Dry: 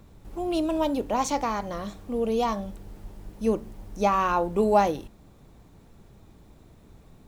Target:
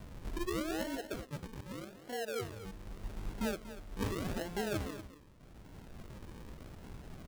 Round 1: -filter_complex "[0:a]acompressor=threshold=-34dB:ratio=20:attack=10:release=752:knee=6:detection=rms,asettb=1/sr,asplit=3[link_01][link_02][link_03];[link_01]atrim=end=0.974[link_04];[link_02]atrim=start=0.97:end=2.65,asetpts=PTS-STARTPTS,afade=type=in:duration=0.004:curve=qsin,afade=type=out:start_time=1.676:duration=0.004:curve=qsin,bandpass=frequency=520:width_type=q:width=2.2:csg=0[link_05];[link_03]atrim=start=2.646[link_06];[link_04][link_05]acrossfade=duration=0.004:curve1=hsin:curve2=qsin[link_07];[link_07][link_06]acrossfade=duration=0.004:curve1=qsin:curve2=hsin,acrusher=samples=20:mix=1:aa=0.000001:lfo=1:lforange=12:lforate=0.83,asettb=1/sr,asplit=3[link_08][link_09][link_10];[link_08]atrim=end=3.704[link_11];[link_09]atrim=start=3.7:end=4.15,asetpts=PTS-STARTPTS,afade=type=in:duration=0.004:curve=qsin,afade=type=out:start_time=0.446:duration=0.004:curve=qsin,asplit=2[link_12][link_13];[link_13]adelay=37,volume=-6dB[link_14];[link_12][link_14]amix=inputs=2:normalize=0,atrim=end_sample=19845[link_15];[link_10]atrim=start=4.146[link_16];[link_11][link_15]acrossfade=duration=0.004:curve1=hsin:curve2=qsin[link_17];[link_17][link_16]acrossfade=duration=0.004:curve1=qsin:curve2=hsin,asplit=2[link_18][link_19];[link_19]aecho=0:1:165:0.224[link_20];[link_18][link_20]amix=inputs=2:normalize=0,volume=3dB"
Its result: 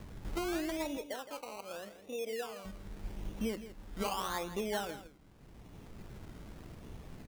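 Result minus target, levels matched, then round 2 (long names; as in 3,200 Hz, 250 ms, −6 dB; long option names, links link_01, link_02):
sample-and-hold swept by an LFO: distortion −11 dB; echo 73 ms early
-filter_complex "[0:a]acompressor=threshold=-34dB:ratio=20:attack=10:release=752:knee=6:detection=rms,asettb=1/sr,asplit=3[link_01][link_02][link_03];[link_01]atrim=end=0.974[link_04];[link_02]atrim=start=0.97:end=2.65,asetpts=PTS-STARTPTS,afade=type=in:duration=0.004:curve=qsin,afade=type=out:start_time=1.676:duration=0.004:curve=qsin,bandpass=frequency=520:width_type=q:width=2.2:csg=0[link_05];[link_03]atrim=start=2.646[link_06];[link_04][link_05]acrossfade=duration=0.004:curve1=hsin:curve2=qsin[link_07];[link_07][link_06]acrossfade=duration=0.004:curve1=qsin:curve2=hsin,acrusher=samples=51:mix=1:aa=0.000001:lfo=1:lforange=30.6:lforate=0.83,asettb=1/sr,asplit=3[link_08][link_09][link_10];[link_08]atrim=end=3.704[link_11];[link_09]atrim=start=3.7:end=4.15,asetpts=PTS-STARTPTS,afade=type=in:duration=0.004:curve=qsin,afade=type=out:start_time=0.446:duration=0.004:curve=qsin,asplit=2[link_12][link_13];[link_13]adelay=37,volume=-6dB[link_14];[link_12][link_14]amix=inputs=2:normalize=0,atrim=end_sample=19845[link_15];[link_10]atrim=start=4.146[link_16];[link_11][link_15]acrossfade=duration=0.004:curve1=hsin:curve2=qsin[link_17];[link_17][link_16]acrossfade=duration=0.004:curve1=qsin:curve2=hsin,asplit=2[link_18][link_19];[link_19]aecho=0:1:238:0.224[link_20];[link_18][link_20]amix=inputs=2:normalize=0,volume=3dB"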